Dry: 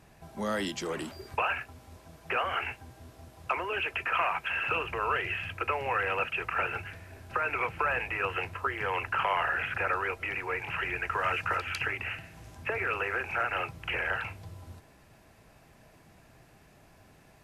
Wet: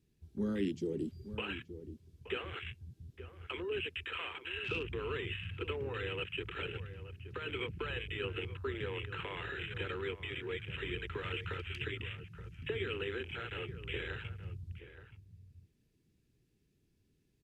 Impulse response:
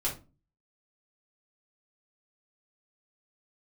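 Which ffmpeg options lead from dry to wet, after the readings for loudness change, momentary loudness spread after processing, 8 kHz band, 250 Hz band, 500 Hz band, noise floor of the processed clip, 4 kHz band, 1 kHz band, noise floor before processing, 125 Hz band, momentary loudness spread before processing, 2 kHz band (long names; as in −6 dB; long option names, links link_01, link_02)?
−9.0 dB, 12 LU, can't be measured, +1.0 dB, −4.0 dB, −75 dBFS, −2.0 dB, −17.5 dB, −59 dBFS, +1.0 dB, 10 LU, −11.0 dB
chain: -filter_complex "[0:a]afwtdn=0.02,firequalizer=gain_entry='entry(410,0);entry(640,-24);entry(1800,-13);entry(3300,-3);entry(9400,-5)':delay=0.05:min_phase=1,asplit=2[link_01][link_02];[link_02]adelay=874.6,volume=-12dB,highshelf=frequency=4000:gain=-19.7[link_03];[link_01][link_03]amix=inputs=2:normalize=0,volume=1.5dB"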